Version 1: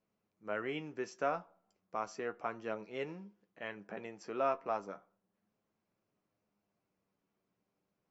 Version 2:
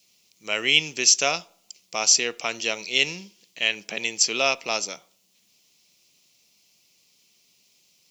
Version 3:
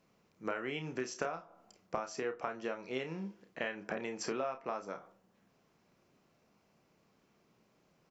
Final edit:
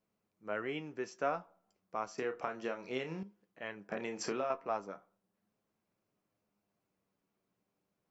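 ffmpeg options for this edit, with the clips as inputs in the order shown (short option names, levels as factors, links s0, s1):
-filter_complex "[2:a]asplit=2[s0][s1];[0:a]asplit=3[s2][s3][s4];[s2]atrim=end=2.182[s5];[s0]atrim=start=2.178:end=3.232[s6];[s3]atrim=start=3.228:end=3.922[s7];[s1]atrim=start=3.918:end=4.502[s8];[s4]atrim=start=4.498[s9];[s5][s6]acrossfade=d=0.004:c1=hsin:c2=hsin[s10];[s10][s7]acrossfade=d=0.004:c1=hsin:c2=hsin[s11];[s11][s8]acrossfade=d=0.004:c1=hsin:c2=hsin[s12];[s12][s9]acrossfade=d=0.004:c1=hsin:c2=hsin"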